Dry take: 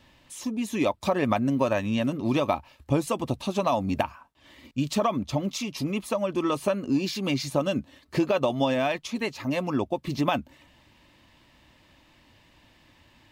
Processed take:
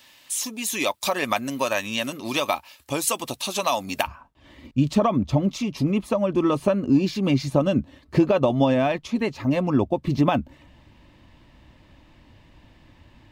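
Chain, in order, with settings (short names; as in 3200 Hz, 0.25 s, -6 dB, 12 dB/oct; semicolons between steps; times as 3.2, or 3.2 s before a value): tilt +4 dB/oct, from 4.06 s -2 dB/oct; gain +2.5 dB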